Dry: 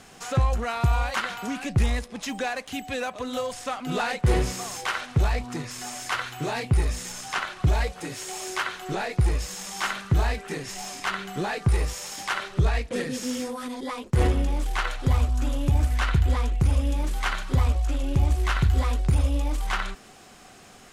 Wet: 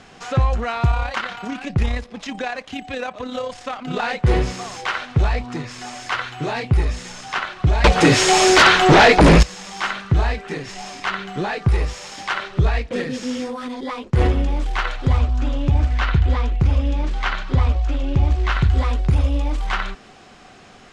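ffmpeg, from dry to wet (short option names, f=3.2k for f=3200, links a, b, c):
-filter_complex "[0:a]asettb=1/sr,asplit=3[a][b][c];[a]atrim=end=0.914[d];[b]atrim=start=0.91:end=4.04,asetpts=PTS-STARTPTS,afade=t=in:d=0.004:c=qsin,afade=t=out:st=3.126:d=0.004:c=qsin,tremolo=f=34:d=0.462[e];[c]atrim=start=4.036[f];[d][e]acrossfade=d=0.004:c1=hsin:c2=qsin[g];[g][f]acrossfade=d=0.004:c1=qsin:c2=hsin,asettb=1/sr,asplit=3[h][i][j];[h]atrim=end=7.844[k];[i]atrim=start=7.84:end=9.43,asetpts=PTS-STARTPTS,afade=t=in:d=0.004:c=qsin,afade=t=out:st=1.586:d=0.004:c=qsin,aeval=exprs='0.299*sin(PI/2*6.31*val(0)/0.299)':c=same[l];[j]atrim=start=9.426[m];[k][l]acrossfade=d=0.004:c1=hsin:c2=qsin[n];[n][m]acrossfade=d=0.004:c1=qsin:c2=hsin,asettb=1/sr,asplit=3[o][p][q];[o]atrim=end=15.194[r];[p]atrim=start=15.19:end=18.52,asetpts=PTS-STARTPTS,afade=t=in:d=0.004:c=qsin,afade=t=out:st=3.326:d=0.004:c=qsin,lowpass=6.6k[s];[q]atrim=start=18.516[t];[r][s]acrossfade=d=0.004:c1=hsin:c2=qsin[u];[u][t]acrossfade=d=0.004:c1=qsin:c2=hsin,lowpass=4.8k,volume=4.5dB"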